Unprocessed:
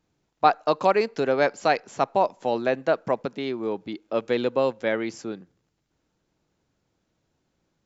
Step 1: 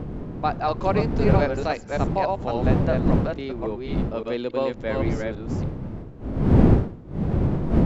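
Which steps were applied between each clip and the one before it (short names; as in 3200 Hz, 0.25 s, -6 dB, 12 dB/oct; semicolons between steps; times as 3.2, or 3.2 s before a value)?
reverse delay 0.282 s, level -2.5 dB; wind noise 220 Hz -19 dBFS; harmonic-percussive split harmonic +5 dB; gain -7 dB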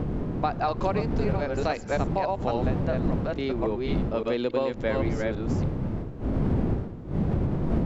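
compressor 10:1, threshold -25 dBFS, peak gain reduction 15.5 dB; gain +3.5 dB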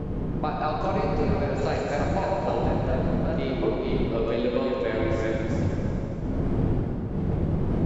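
plate-style reverb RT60 3 s, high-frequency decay 0.9×, DRR -2.5 dB; gain -3.5 dB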